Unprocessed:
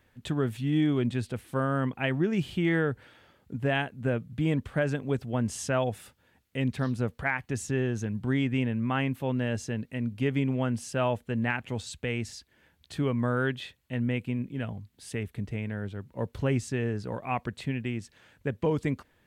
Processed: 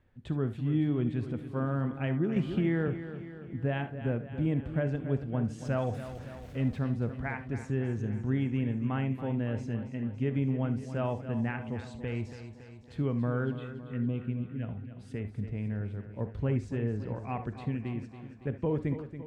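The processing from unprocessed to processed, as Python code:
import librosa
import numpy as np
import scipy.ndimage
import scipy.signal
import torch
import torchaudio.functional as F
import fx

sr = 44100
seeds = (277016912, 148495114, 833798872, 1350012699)

y = fx.zero_step(x, sr, step_db=-39.0, at=(5.65, 6.79))
y = fx.lowpass(y, sr, hz=3800.0, slope=6)
y = fx.tilt_eq(y, sr, slope=-2.0)
y = fx.env_phaser(y, sr, low_hz=400.0, high_hz=1800.0, full_db=-19.5, at=(13.44, 14.62), fade=0.02)
y = fx.echo_feedback(y, sr, ms=280, feedback_pct=59, wet_db=-11.5)
y = fx.rev_gated(y, sr, seeds[0], gate_ms=90, shape='rising', drr_db=10.5)
y = fx.band_squash(y, sr, depth_pct=100, at=(2.36, 2.88))
y = y * 10.0 ** (-7.0 / 20.0)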